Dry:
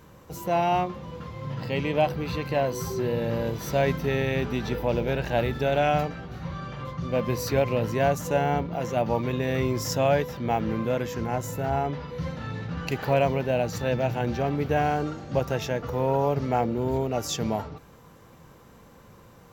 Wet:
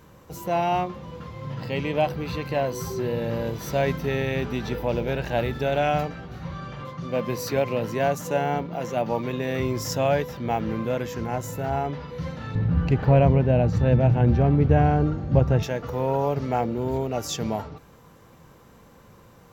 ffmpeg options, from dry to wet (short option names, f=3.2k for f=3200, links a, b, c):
-filter_complex "[0:a]asettb=1/sr,asplit=3[a][b][c];[a]atrim=end=6.824[d];[b]atrim=start=6.82:end=9.6,asetpts=PTS-STARTPTS,afade=t=in:d=0.004:c=qsin,afade=t=out:st=2.776:d=0.004:c=qsin,highpass=130[e];[c]atrim=start=9.596[f];[d][e]acrossfade=d=0.004:c1=hsin:c2=qsin[g];[g][f]acrossfade=d=0.004:c1=qsin:c2=hsin,asettb=1/sr,asplit=3[h][i][j];[h]atrim=end=12.554[k];[i]atrim=start=12.55:end=15.63,asetpts=PTS-STARTPTS,afade=t=in:d=0.004:c=qsin,afade=t=out:st=3.076:d=0.004:c=qsin,aemphasis=mode=reproduction:type=riaa[l];[j]atrim=start=15.626[m];[k][l]acrossfade=d=0.004:c1=hsin:c2=qsin[n];[n][m]acrossfade=d=0.004:c1=qsin:c2=hsin"